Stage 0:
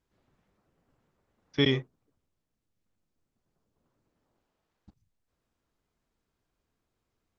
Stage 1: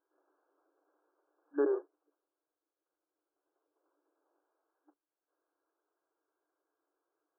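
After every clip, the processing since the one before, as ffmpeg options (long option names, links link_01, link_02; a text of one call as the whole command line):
ffmpeg -i in.wav -af "afftfilt=real='re*between(b*sr/4096,290,1700)':imag='im*between(b*sr/4096,290,1700)':win_size=4096:overlap=0.75" out.wav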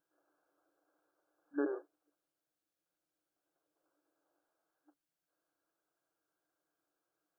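ffmpeg -i in.wav -af "equalizer=frequency=160:width_type=o:width=0.67:gain=12,equalizer=frequency=400:width_type=o:width=0.67:gain=-12,equalizer=frequency=1000:width_type=o:width=0.67:gain=-9,volume=3dB" out.wav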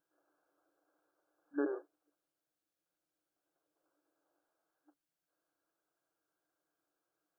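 ffmpeg -i in.wav -af anull out.wav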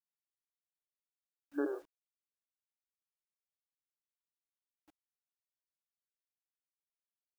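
ffmpeg -i in.wav -af "acrusher=bits=10:mix=0:aa=0.000001" out.wav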